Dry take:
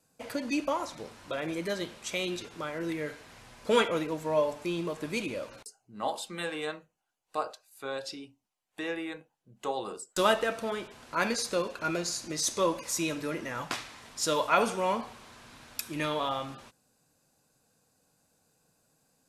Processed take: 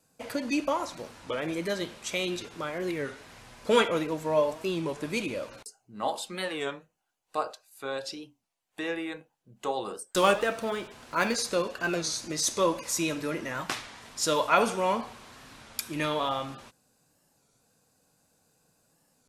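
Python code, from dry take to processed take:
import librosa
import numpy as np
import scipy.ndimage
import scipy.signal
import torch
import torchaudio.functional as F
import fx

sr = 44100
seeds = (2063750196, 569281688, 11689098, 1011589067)

y = fx.block_float(x, sr, bits=7, at=(10.16, 11.37))
y = fx.record_warp(y, sr, rpm=33.33, depth_cents=160.0)
y = F.gain(torch.from_numpy(y), 2.0).numpy()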